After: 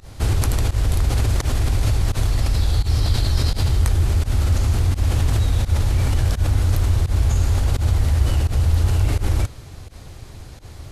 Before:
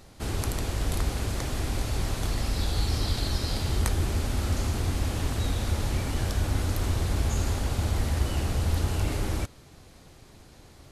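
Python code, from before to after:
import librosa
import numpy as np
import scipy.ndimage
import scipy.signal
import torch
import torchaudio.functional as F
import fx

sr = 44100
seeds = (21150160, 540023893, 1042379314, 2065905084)

p1 = fx.over_compress(x, sr, threshold_db=-31.0, ratio=-0.5)
p2 = x + F.gain(torch.from_numpy(p1), -1.0).numpy()
p3 = fx.low_shelf_res(p2, sr, hz=140.0, db=6.5, q=1.5)
y = fx.volume_shaper(p3, sr, bpm=85, per_beat=1, depth_db=-22, release_ms=86.0, shape='fast start')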